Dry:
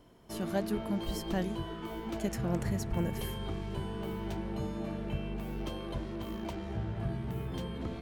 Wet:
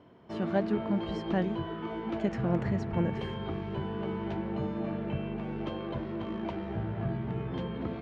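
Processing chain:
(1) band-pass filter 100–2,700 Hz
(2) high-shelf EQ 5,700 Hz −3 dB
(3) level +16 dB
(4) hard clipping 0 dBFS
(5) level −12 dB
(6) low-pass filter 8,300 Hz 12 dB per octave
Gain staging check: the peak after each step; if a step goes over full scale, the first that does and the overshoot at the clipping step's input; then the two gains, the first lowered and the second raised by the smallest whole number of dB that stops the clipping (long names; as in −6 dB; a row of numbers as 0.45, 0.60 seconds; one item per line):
−19.0, −19.0, −3.0, −3.0, −15.0, −15.0 dBFS
no step passes full scale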